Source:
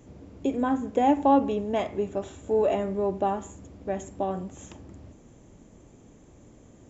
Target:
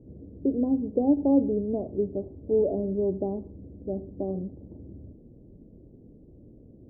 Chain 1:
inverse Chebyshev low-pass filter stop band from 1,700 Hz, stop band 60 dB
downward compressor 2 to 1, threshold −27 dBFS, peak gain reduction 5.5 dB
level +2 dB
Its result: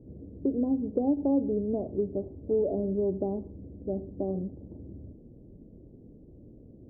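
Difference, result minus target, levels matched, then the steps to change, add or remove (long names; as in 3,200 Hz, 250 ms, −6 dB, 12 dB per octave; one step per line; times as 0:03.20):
downward compressor: peak gain reduction +5.5 dB
remove: downward compressor 2 to 1, threshold −27 dBFS, peak gain reduction 5.5 dB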